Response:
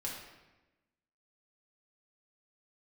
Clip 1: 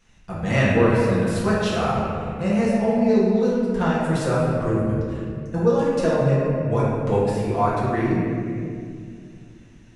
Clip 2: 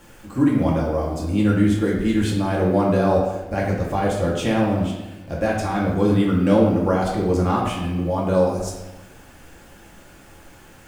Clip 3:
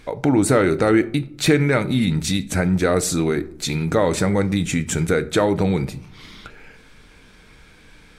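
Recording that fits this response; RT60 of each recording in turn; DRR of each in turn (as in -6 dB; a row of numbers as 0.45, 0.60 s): 2; 2.3, 1.1, 0.70 s; -9.0, -4.0, 11.5 dB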